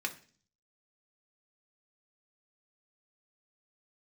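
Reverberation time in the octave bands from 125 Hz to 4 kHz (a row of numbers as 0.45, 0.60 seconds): 0.75, 0.65, 0.45, 0.40, 0.45, 0.55 seconds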